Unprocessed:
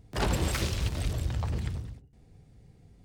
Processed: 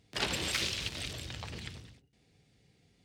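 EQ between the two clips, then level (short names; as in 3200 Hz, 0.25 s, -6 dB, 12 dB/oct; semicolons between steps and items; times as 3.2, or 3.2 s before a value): weighting filter D; -6.5 dB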